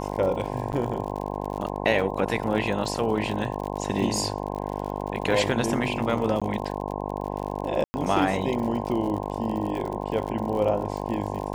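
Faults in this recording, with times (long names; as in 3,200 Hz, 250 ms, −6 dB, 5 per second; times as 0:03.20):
mains buzz 50 Hz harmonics 21 −31 dBFS
surface crackle 62 per second −32 dBFS
0:00.72–0:00.73: drop-out 9.2 ms
0:06.40–0:06.42: drop-out 16 ms
0:07.84–0:07.94: drop-out 100 ms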